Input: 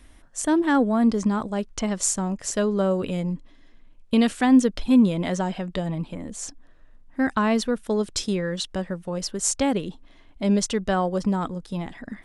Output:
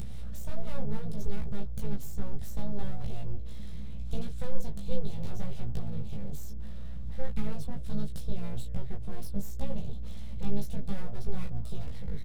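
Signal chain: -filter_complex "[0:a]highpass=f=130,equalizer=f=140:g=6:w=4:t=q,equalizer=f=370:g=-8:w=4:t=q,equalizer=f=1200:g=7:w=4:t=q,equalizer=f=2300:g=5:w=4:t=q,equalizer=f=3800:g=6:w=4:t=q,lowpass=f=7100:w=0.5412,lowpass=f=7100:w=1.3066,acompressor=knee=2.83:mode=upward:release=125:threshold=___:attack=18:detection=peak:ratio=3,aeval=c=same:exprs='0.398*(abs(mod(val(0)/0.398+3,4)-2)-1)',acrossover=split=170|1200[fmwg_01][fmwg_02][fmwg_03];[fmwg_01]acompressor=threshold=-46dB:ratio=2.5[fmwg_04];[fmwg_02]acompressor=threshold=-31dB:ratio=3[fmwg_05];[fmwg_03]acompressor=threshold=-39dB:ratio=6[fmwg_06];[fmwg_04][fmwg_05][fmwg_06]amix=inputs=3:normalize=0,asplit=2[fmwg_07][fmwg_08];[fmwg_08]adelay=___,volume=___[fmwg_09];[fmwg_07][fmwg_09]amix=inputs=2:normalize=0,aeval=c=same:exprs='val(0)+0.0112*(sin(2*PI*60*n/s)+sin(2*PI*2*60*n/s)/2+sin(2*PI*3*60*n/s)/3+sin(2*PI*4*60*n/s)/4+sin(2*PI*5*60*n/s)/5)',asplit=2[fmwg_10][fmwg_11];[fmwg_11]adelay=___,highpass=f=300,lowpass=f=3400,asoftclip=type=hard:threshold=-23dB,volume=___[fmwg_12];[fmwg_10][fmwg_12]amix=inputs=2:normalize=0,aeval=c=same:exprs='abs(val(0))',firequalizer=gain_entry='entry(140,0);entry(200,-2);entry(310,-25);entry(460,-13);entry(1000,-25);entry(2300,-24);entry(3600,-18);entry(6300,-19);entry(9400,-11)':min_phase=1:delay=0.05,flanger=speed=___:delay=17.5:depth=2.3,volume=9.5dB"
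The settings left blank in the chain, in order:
-33dB, 15, -4.5dB, 260, -20dB, 0.7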